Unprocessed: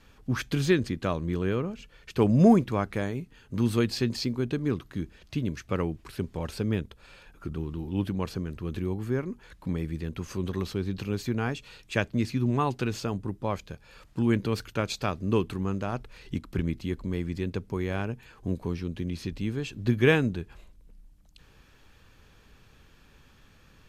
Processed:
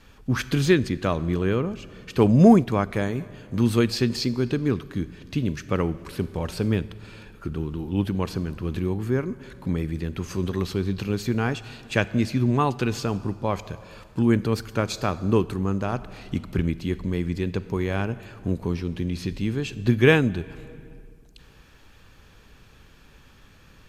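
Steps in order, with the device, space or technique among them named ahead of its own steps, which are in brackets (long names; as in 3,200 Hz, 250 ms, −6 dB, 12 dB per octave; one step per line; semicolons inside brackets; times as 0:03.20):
0:14.23–0:15.84: parametric band 2,900 Hz −5 dB 0.97 octaves
compressed reverb return (on a send at −12 dB: convolution reverb RT60 1.8 s, pre-delay 30 ms + downward compressor 5 to 1, threshold −30 dBFS, peak gain reduction 14.5 dB)
on the sum: level +4.5 dB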